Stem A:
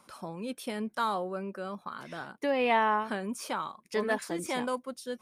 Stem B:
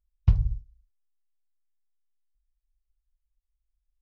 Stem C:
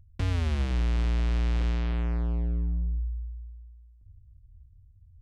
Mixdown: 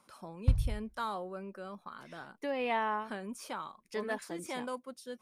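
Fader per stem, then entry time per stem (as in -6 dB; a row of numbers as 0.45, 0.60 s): -6.5 dB, -6.0 dB, off; 0.00 s, 0.20 s, off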